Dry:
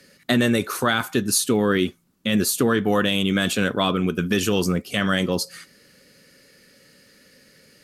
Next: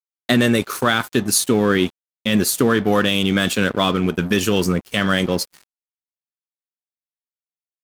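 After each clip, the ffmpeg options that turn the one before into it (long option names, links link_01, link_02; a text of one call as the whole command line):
ffmpeg -i in.wav -af "aeval=exprs='sgn(val(0))*max(abs(val(0))-0.015,0)':channel_layout=same,volume=4dB" out.wav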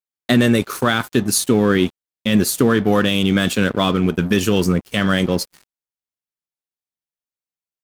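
ffmpeg -i in.wav -af "lowshelf=frequency=370:gain=4.5,volume=-1dB" out.wav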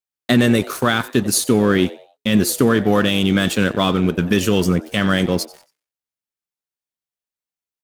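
ffmpeg -i in.wav -filter_complex "[0:a]asplit=4[link_01][link_02][link_03][link_04];[link_02]adelay=91,afreqshift=140,volume=-19.5dB[link_05];[link_03]adelay=182,afreqshift=280,volume=-29.7dB[link_06];[link_04]adelay=273,afreqshift=420,volume=-39.8dB[link_07];[link_01][link_05][link_06][link_07]amix=inputs=4:normalize=0" out.wav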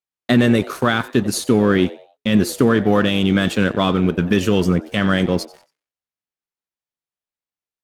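ffmpeg -i in.wav -af "aemphasis=mode=reproduction:type=cd" out.wav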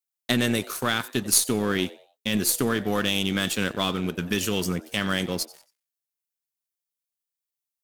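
ffmpeg -i in.wav -af "crystalizer=i=5:c=0,aeval=exprs='1.68*(cos(1*acos(clip(val(0)/1.68,-1,1)))-cos(1*PI/2))+0.237*(cos(3*acos(clip(val(0)/1.68,-1,1)))-cos(3*PI/2))+0.0335*(cos(6*acos(clip(val(0)/1.68,-1,1)))-cos(6*PI/2))':channel_layout=same,volume=-6.5dB" out.wav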